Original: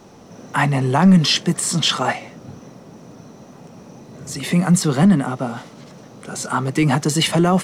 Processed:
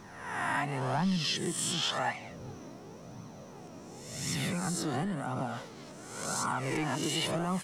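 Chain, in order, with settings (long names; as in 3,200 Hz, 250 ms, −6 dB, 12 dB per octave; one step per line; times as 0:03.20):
peak hold with a rise ahead of every peak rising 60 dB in 0.92 s
downward compressor 4 to 1, threshold −22 dBFS, peak gain reduction 12 dB
flanger 0.93 Hz, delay 0.8 ms, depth 2.5 ms, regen +35%
level −4 dB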